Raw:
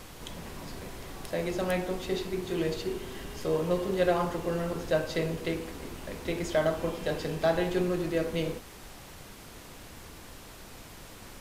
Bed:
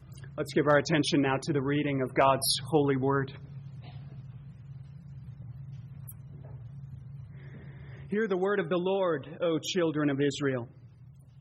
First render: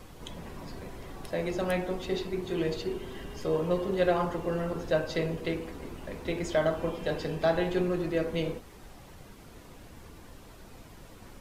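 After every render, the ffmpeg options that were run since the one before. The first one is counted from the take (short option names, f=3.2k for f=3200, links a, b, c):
-af "afftdn=nr=8:nf=-48"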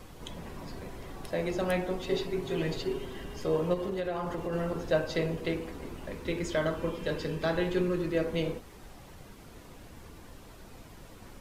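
-filter_complex "[0:a]asettb=1/sr,asplit=3[a][b][c];[a]atrim=end=2.064[d];[b]atrim=start=2.06:end=3.06,asetpts=PTS-STARTPTS,afade=t=in:d=0.004:c=qsin,afade=t=out:st=0.996:d=0.004:c=qsin,aecho=1:1:7.3:0.57,atrim=end_sample=44100[e];[c]atrim=start=3.056[f];[d][e]acrossfade=d=0.004:c1=hsin:c2=qsin[g];[g][f]acrossfade=d=0.004:c1=qsin:c2=hsin,asplit=3[h][i][j];[h]afade=t=out:st=3.73:d=0.02[k];[i]acompressor=threshold=-29dB:ratio=6:attack=3.2:release=140:knee=1:detection=peak,afade=t=in:st=3.73:d=0.02,afade=t=out:st=4.52:d=0.02[l];[j]afade=t=in:st=4.52:d=0.02[m];[k][l][m]amix=inputs=3:normalize=0,asettb=1/sr,asplit=3[n][o][p];[n]atrim=end=6.144[q];[o]atrim=start=6.14:end=8.15,asetpts=PTS-STARTPTS,afade=t=in:d=0.004:c=qsin,afade=t=out:st=2.006:d=0.004:c=qsin,equalizer=f=720:t=o:w=0.24:g=-14[r];[p]atrim=start=8.146[s];[q][r]acrossfade=d=0.004:c1=hsin:c2=qsin[t];[t][s]acrossfade=d=0.004:c1=qsin:c2=hsin"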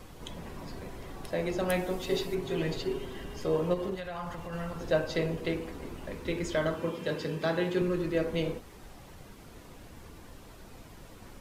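-filter_complex "[0:a]asettb=1/sr,asplit=3[a][b][c];[a]atrim=end=1.694[d];[b]atrim=start=1.69:end=2.35,asetpts=PTS-STARTPTS,afade=t=in:d=0.004:c=qsin,afade=t=out:st=0.656:d=0.004:c=qsin,highshelf=f=6.9k:g=10[e];[c]atrim=start=2.346[f];[d][e]acrossfade=d=0.004:c1=hsin:c2=qsin[g];[g][f]acrossfade=d=0.004:c1=qsin:c2=hsin,asettb=1/sr,asplit=3[h][i][j];[h]atrim=end=3.954[k];[i]atrim=start=3.95:end=4.81,asetpts=PTS-STARTPTS,afade=t=in:d=0.004:c=qsin,afade=t=out:st=0.856:d=0.004:c=qsin,equalizer=f=370:t=o:w=1.1:g=-13.5[l];[j]atrim=start=4.806[m];[k][l]acrossfade=d=0.004:c1=hsin:c2=qsin[n];[n][m]acrossfade=d=0.004:c1=qsin:c2=hsin,asettb=1/sr,asplit=3[o][p][q];[o]atrim=end=6.764[r];[p]atrim=start=6.76:end=7.82,asetpts=PTS-STARTPTS,afade=t=in:d=0.004:c=qsin,afade=t=out:st=1.056:d=0.004:c=qsin,highpass=f=96:w=0.5412,highpass=f=96:w=1.3066[s];[q]atrim=start=7.816[t];[r][s]acrossfade=d=0.004:c1=hsin:c2=qsin[u];[u][t]acrossfade=d=0.004:c1=qsin:c2=hsin"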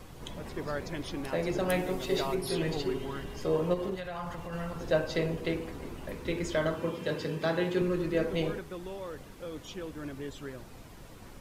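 -filter_complex "[1:a]volume=-12.5dB[a];[0:a][a]amix=inputs=2:normalize=0"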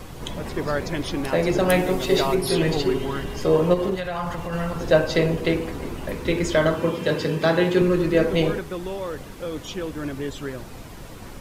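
-af "volume=10dB"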